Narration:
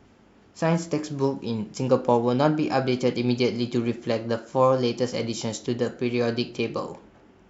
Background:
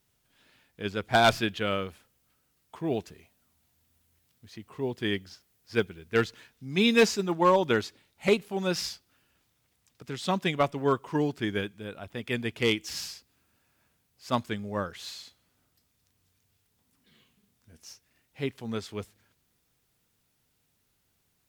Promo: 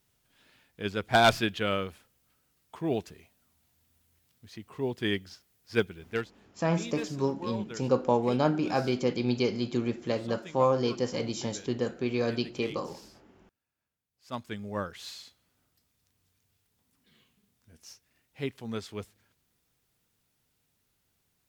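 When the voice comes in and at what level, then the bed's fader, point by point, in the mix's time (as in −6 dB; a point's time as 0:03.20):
6.00 s, −4.5 dB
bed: 0:06.09 0 dB
0:06.31 −17.5 dB
0:14.03 −17.5 dB
0:14.64 −2 dB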